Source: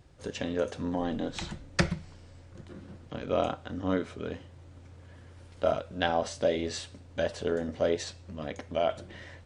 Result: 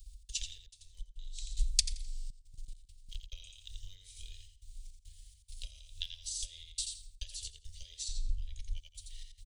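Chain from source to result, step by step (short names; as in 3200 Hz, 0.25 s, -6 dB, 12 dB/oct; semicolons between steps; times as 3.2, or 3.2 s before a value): step gate "x.xx.xx.xxxxxxx" 104 bpm -60 dB; feedback echo 85 ms, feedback 22%, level -4 dB; 0.66–1.57 gate -26 dBFS, range -11 dB; 8.08–8.77 tilt -3 dB/oct; compressor 10:1, threshold -30 dBFS, peak gain reduction 12 dB; transient shaper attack +7 dB, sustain -1 dB; inverse Chebyshev band-stop 130–1500 Hz, stop band 60 dB; bell 5500 Hz -12 dB 1.2 oct; 2.3–3.09 level quantiser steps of 14 dB; gain +16.5 dB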